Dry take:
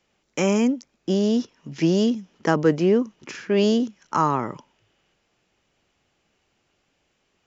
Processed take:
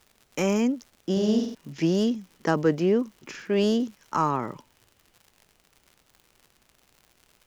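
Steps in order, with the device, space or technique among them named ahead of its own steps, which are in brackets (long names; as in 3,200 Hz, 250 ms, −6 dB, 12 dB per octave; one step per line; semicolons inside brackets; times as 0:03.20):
record under a worn stylus (stylus tracing distortion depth 0.021 ms; surface crackle 110 per second −38 dBFS; pink noise bed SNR 40 dB)
0:01.12–0:01.55: flutter between parallel walls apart 8.1 metres, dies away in 0.58 s
level −3.5 dB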